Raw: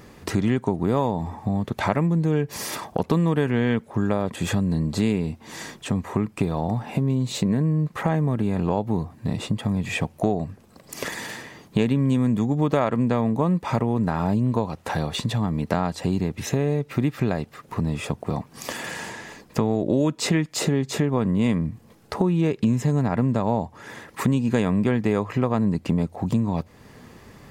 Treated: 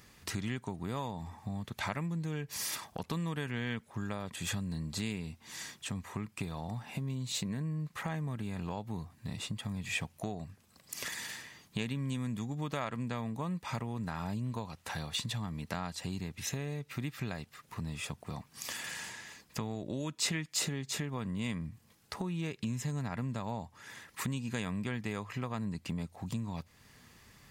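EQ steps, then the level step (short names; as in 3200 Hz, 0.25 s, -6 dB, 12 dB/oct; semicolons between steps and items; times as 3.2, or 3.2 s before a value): passive tone stack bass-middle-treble 5-5-5; +2.0 dB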